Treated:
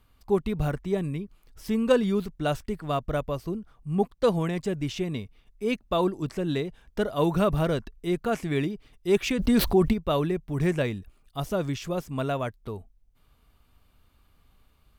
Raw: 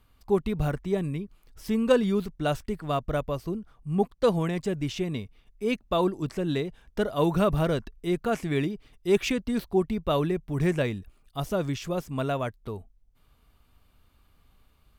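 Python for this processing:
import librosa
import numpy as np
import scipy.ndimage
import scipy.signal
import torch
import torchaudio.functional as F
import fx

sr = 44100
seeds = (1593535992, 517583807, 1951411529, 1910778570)

y = fx.env_flatten(x, sr, amount_pct=70, at=(9.38, 9.92), fade=0.02)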